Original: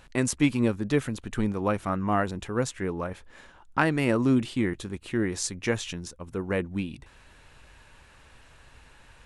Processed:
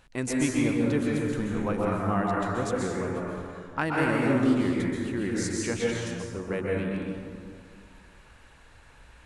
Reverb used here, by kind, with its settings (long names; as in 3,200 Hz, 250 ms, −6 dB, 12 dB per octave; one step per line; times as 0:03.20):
dense smooth reverb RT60 2.1 s, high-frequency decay 0.45×, pre-delay 115 ms, DRR −4 dB
level −5.5 dB